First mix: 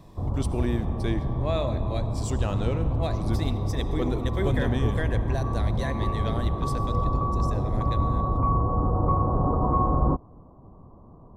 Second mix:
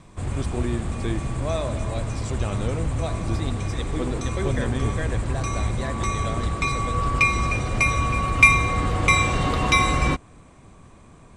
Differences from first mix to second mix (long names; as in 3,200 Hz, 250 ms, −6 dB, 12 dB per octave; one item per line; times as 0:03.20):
background: remove Butterworth low-pass 1,100 Hz 48 dB per octave
master: add low-pass filter 8,000 Hz 12 dB per octave